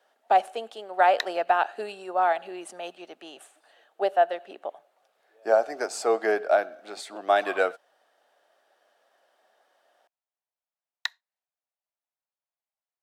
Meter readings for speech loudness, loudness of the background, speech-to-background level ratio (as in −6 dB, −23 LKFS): −25.5 LKFS, −35.5 LKFS, 10.0 dB